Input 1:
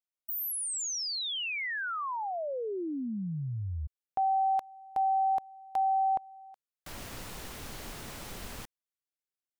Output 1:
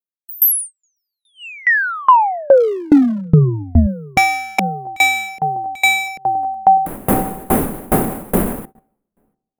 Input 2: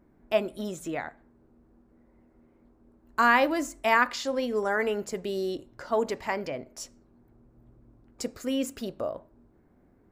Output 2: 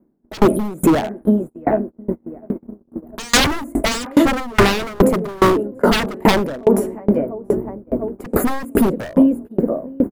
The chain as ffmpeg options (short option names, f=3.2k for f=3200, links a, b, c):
-filter_complex "[0:a]asplit=2[a][b];[b]adelay=695,lowpass=f=1.2k:p=1,volume=-16.5dB,asplit=2[c][d];[d]adelay=695,lowpass=f=1.2k:p=1,volume=0.53,asplit=2[e][f];[f]adelay=695,lowpass=f=1.2k:p=1,volume=0.53,asplit=2[g][h];[h]adelay=695,lowpass=f=1.2k:p=1,volume=0.53,asplit=2[i][j];[j]adelay=695,lowpass=f=1.2k:p=1,volume=0.53[k];[c][e][g][i][k]amix=inputs=5:normalize=0[l];[a][l]amix=inputs=2:normalize=0,acrossover=split=3000[m][n];[n]acompressor=threshold=-48dB:ratio=4:attack=1:release=60[o];[m][o]amix=inputs=2:normalize=0,asplit=2[p][q];[q]aecho=0:1:681:0.0708[r];[p][r]amix=inputs=2:normalize=0,acontrast=75,firequalizer=gain_entry='entry(110,0);entry(190,14);entry(390,14);entry(3100,-7);entry(5300,-17);entry(10000,9)':delay=0.05:min_phase=1,aeval=exprs='0.282*(abs(mod(val(0)/0.282+3,4)-2)-1)':c=same,agate=range=-34dB:threshold=-36dB:ratio=16:release=176:detection=peak,equalizer=f=1.3k:w=0.3:g=-7.5,alimiter=level_in=23dB:limit=-1dB:release=50:level=0:latency=1,aeval=exprs='val(0)*pow(10,-29*if(lt(mod(2.4*n/s,1),2*abs(2.4)/1000),1-mod(2.4*n/s,1)/(2*abs(2.4)/1000),(mod(2.4*n/s,1)-2*abs(2.4)/1000)/(1-2*abs(2.4)/1000))/20)':c=same"